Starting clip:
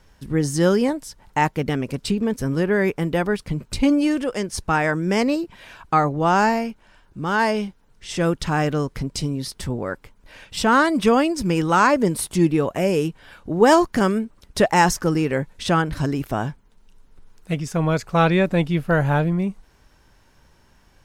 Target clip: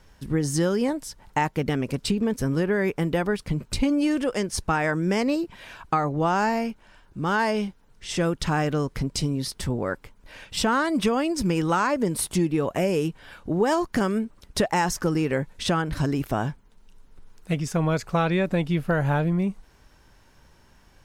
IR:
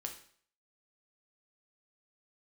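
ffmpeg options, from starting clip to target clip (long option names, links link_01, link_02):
-af "acompressor=threshold=-19dB:ratio=6"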